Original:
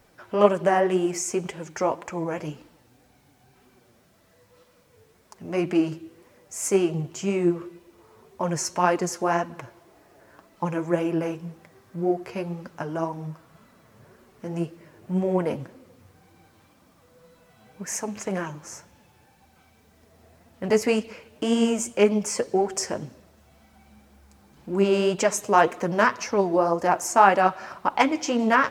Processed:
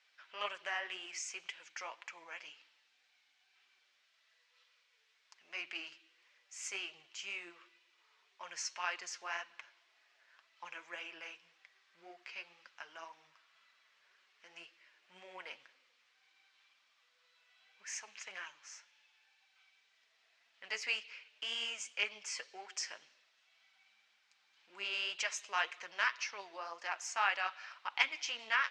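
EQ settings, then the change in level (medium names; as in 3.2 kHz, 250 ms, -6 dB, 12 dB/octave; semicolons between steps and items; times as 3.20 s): band-pass filter 2.7 kHz, Q 1.1; distance through air 160 m; differentiator; +8.5 dB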